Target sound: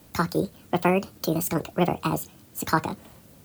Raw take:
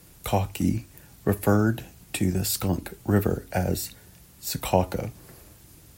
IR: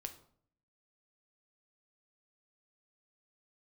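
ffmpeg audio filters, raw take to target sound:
-af "asetrate=76440,aresample=44100"

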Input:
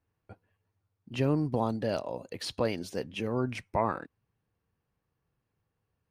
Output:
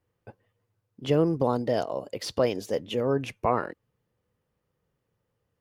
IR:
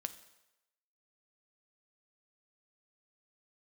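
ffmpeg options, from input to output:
-af "equalizer=f=430:w=2.5:g=7,asetrate=48000,aresample=44100,volume=2dB"

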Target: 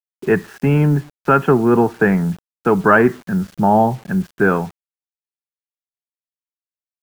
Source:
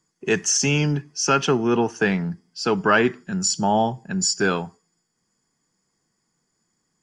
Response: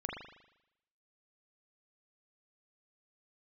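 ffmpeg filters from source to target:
-af "lowpass=f=1.8k:w=0.5412,lowpass=f=1.8k:w=1.3066,lowshelf=f=94:g=5.5,acrusher=bits=7:mix=0:aa=0.000001,volume=6dB"

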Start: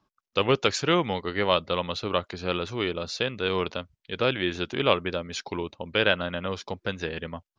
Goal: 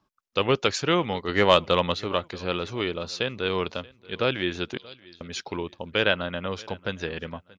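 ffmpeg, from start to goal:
-filter_complex "[0:a]asplit=3[a][b][c];[a]afade=t=out:st=1.28:d=0.02[d];[b]acontrast=39,afade=t=in:st=1.28:d=0.02,afade=t=out:st=1.93:d=0.02[e];[c]afade=t=in:st=1.93:d=0.02[f];[d][e][f]amix=inputs=3:normalize=0,asettb=1/sr,asplit=3[g][h][i];[g]atrim=end=4.774[j];[h]atrim=start=4.77:end=5.21,asetpts=PTS-STARTPTS,afade=t=in:d=0.004:c=qsin,afade=t=out:st=0.436:d=0.004:c=qsin,asuperpass=centerf=4800:order=4:qfactor=3.7[k];[i]atrim=start=5.206[l];[j][k]acrossfade=d=0.004:c1=hsin:c2=qsin[m];[m][l]acrossfade=d=0.004:c1=qsin:c2=hsin,aecho=1:1:630|1260:0.0708|0.0227"

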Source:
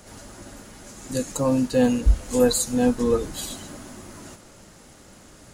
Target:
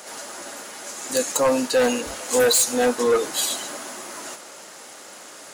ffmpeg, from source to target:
-af "highpass=530,aeval=exprs='0.266*(cos(1*acos(clip(val(0)/0.266,-1,1)))-cos(1*PI/2))+0.119*(cos(5*acos(clip(val(0)/0.266,-1,1)))-cos(5*PI/2))':c=same"

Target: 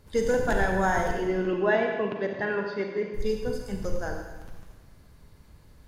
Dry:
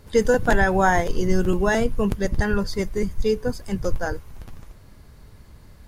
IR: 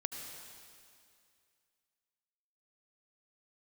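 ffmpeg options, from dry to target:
-filter_complex "[0:a]asoftclip=type=hard:threshold=-8.5dB,asettb=1/sr,asplit=3[a][b][c];[a]atrim=end=1.114[d];[b]atrim=start=1.11:end=3.14,asetpts=PTS-STARTPTS,afade=t=in:d=0.004:c=qsin,afade=t=out:st=2.026:d=0.004:c=qsin,highpass=f=170:w=0.5412,highpass=f=170:w=1.3066,equalizer=f=200:t=q:w=4:g=-4,equalizer=f=400:t=q:w=4:g=4,equalizer=f=650:t=q:w=4:g=6,equalizer=f=1k:t=q:w=4:g=3,equalizer=f=1.7k:t=q:w=4:g=4,equalizer=f=2.5k:t=q:w=4:g=6,lowpass=f=3.8k:w=0.5412,lowpass=f=3.8k:w=1.3066[e];[c]atrim=start=3.136[f];[d][e]acrossfade=d=0.004:c1=hsin:c2=qsin[g];[g][f]acrossfade=d=0.004:c1=qsin:c2=hsin[h];[1:a]atrim=start_sample=2205,asetrate=88200,aresample=44100[i];[h][i]afir=irnorm=-1:irlink=0"

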